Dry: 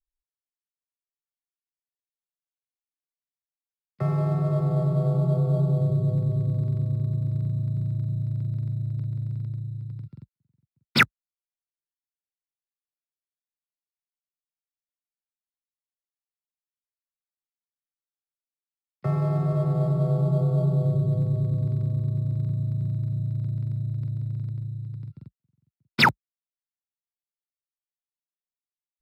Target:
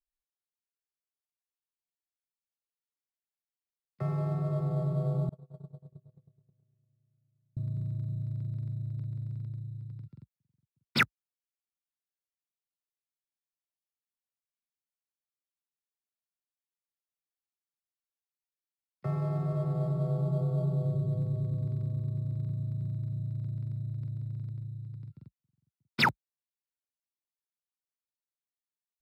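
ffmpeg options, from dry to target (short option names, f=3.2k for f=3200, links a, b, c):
-filter_complex "[0:a]asettb=1/sr,asplit=3[a][b][c];[a]atrim=end=5.294[d];[b]atrim=start=5.29:end=7.57,asetpts=PTS-STARTPTS,afade=t=in:d=0.004:c=qsin,afade=t=out:st=2.276:d=0.004:c=qsin,agate=range=-42dB:threshold=-18dB:ratio=16:detection=peak[e];[c]atrim=start=7.566[f];[d][e]acrossfade=d=0.004:c1=hsin:c2=qsin[g];[g][f]acrossfade=d=0.004:c1=qsin:c2=hsin,volume=-7dB"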